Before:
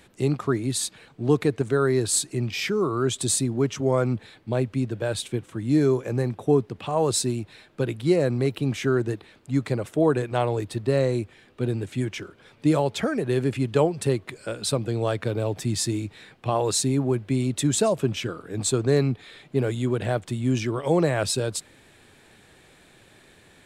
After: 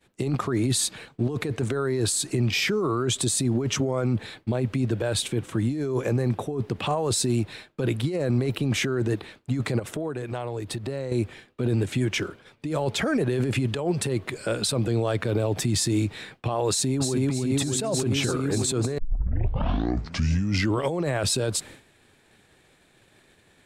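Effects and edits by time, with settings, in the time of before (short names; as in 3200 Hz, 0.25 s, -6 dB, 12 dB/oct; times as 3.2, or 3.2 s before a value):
9.79–11.12 compressor, threshold -36 dBFS
16.7–17.16 echo throw 0.3 s, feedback 75%, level -3 dB
18.98 tape start 1.87 s
whole clip: expander -44 dBFS; negative-ratio compressor -27 dBFS, ratio -1; limiter -20 dBFS; gain +4.5 dB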